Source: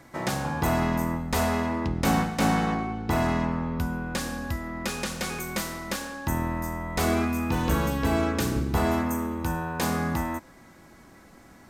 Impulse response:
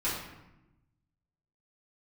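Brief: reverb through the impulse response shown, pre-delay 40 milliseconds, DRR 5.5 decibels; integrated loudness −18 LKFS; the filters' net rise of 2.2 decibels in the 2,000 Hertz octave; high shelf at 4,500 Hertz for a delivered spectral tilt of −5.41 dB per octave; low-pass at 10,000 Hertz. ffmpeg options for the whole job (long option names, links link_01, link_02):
-filter_complex "[0:a]lowpass=10000,equalizer=frequency=2000:width_type=o:gain=3.5,highshelf=frequency=4500:gain=-4,asplit=2[link_01][link_02];[1:a]atrim=start_sample=2205,adelay=40[link_03];[link_02][link_03]afir=irnorm=-1:irlink=0,volume=-13.5dB[link_04];[link_01][link_04]amix=inputs=2:normalize=0,volume=8dB"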